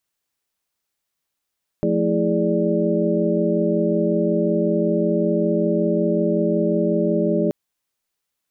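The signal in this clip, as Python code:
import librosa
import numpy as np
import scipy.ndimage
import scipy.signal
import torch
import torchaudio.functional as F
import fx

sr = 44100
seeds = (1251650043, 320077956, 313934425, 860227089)

y = fx.chord(sr, length_s=5.68, notes=(53, 57, 64, 68, 74), wave='sine', level_db=-23.0)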